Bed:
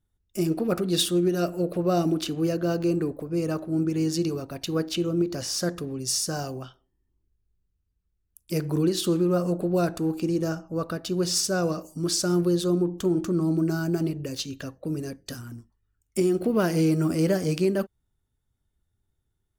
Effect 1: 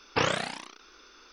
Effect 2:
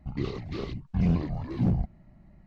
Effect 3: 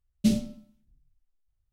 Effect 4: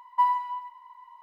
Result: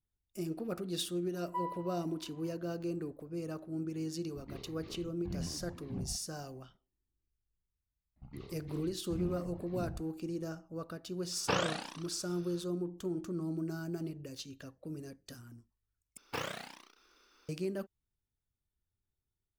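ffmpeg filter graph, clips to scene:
-filter_complex "[2:a]asplit=2[s0][s1];[1:a]asplit=2[s2][s3];[0:a]volume=0.224[s4];[s2]equalizer=f=2100:w=5.4:g=-7.5[s5];[s3]acrusher=bits=3:mode=log:mix=0:aa=0.000001[s6];[s4]asplit=2[s7][s8];[s7]atrim=end=16.174[s9];[s6]atrim=end=1.32,asetpts=PTS-STARTPTS,volume=0.237[s10];[s8]atrim=start=17.486[s11];[4:a]atrim=end=1.22,asetpts=PTS-STARTPTS,volume=0.168,afade=t=in:d=0.004:c=hsin,afade=t=out:st=1.216:d=0.004:c=hsin,adelay=1360[s12];[s0]atrim=end=2.46,asetpts=PTS-STARTPTS,volume=0.168,afade=t=in:d=0.004:c=hsin,afade=t=out:st=2.456:d=0.004:c=hsin,adelay=4310[s13];[s1]atrim=end=2.46,asetpts=PTS-STARTPTS,volume=0.158,afade=t=in:d=0.004:c=hsin,afade=t=out:st=2.456:d=0.004:c=hsin,adelay=8160[s14];[s5]atrim=end=1.32,asetpts=PTS-STARTPTS,volume=0.531,afade=t=in:d=0.004:c=hsin,afade=t=out:st=1.316:d=0.004:c=hsin,adelay=11320[s15];[s9][s10]acrossfade=d=0.004:c1=hsin:c2=hsin[s16];[s16][s11]acrossfade=d=0.004:c1=hsin:c2=hsin[s17];[s17][s12][s13][s14][s15]amix=inputs=5:normalize=0"

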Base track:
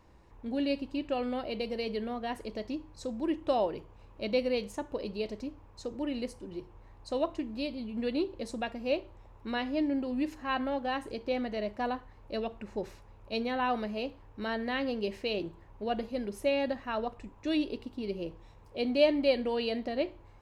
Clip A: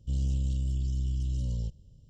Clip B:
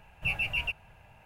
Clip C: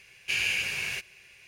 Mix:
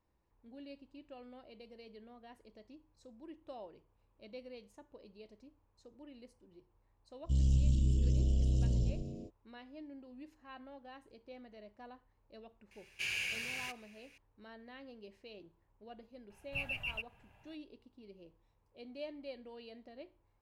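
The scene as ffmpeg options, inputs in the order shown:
-filter_complex "[0:a]volume=0.1[s0];[1:a]asplit=9[s1][s2][s3][s4][s5][s6][s7][s8][s9];[s2]adelay=110,afreqshift=-96,volume=0.316[s10];[s3]adelay=220,afreqshift=-192,volume=0.2[s11];[s4]adelay=330,afreqshift=-288,volume=0.126[s12];[s5]adelay=440,afreqshift=-384,volume=0.0794[s13];[s6]adelay=550,afreqshift=-480,volume=0.0495[s14];[s7]adelay=660,afreqshift=-576,volume=0.0313[s15];[s8]adelay=770,afreqshift=-672,volume=0.0197[s16];[s9]adelay=880,afreqshift=-768,volume=0.0124[s17];[s1][s10][s11][s12][s13][s14][s15][s16][s17]amix=inputs=9:normalize=0[s18];[3:a]asoftclip=type=tanh:threshold=0.158[s19];[2:a]equalizer=f=3200:w=7.7:g=4[s20];[s18]atrim=end=2.09,asetpts=PTS-STARTPTS,volume=0.944,afade=t=in:d=0.05,afade=t=out:st=2.04:d=0.05,adelay=318402S[s21];[s19]atrim=end=1.47,asetpts=PTS-STARTPTS,volume=0.355,afade=t=in:d=0.004:c=hsin,afade=t=out:st=1.466:d=0.004:c=hsin,adelay=12710[s22];[s20]atrim=end=1.25,asetpts=PTS-STARTPTS,volume=0.335,afade=t=in:d=0.004:c=hsin,afade=t=out:st=1.246:d=0.004:c=hsin,adelay=16300[s23];[s0][s21][s22][s23]amix=inputs=4:normalize=0"

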